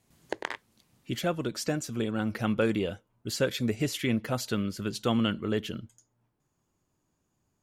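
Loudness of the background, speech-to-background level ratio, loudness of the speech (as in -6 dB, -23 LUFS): -38.5 LUFS, 8.0 dB, -30.5 LUFS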